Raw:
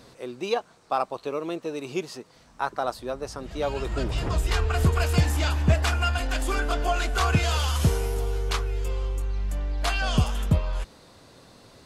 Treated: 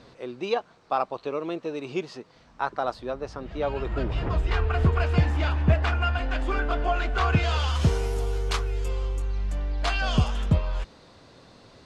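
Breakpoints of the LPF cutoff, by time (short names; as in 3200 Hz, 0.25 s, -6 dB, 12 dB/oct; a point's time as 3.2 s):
2.9 s 4400 Hz
3.74 s 2700 Hz
7.04 s 2700 Hz
7.74 s 4600 Hz
8.24 s 10000 Hz
8.88 s 10000 Hz
9.78 s 5600 Hz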